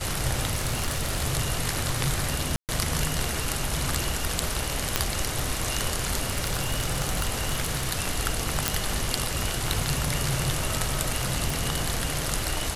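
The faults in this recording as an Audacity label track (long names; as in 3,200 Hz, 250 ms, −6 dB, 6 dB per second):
0.500000	1.230000	clipping −21 dBFS
2.560000	2.690000	drop-out 128 ms
4.960000	4.960000	click −4 dBFS
6.290000	7.900000	clipping −20 dBFS
8.680000	8.680000	click
11.500000	11.500000	click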